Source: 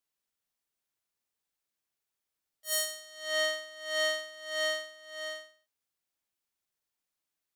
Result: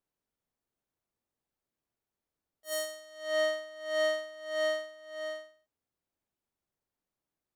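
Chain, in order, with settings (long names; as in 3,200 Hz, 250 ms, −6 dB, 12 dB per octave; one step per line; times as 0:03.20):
tilt shelving filter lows +8.5 dB, about 1,200 Hz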